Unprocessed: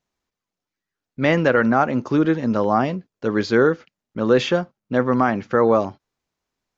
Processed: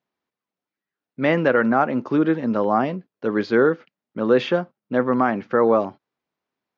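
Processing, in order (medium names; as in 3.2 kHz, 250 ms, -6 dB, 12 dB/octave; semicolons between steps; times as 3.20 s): high-pass 170 Hz 12 dB/octave; distance through air 190 m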